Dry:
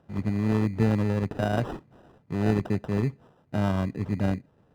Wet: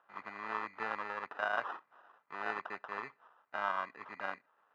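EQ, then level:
four-pole ladder band-pass 1,400 Hz, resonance 45%
+10.5 dB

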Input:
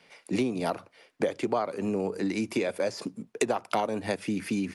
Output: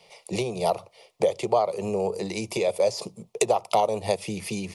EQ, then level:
phaser with its sweep stopped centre 650 Hz, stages 4
+7.5 dB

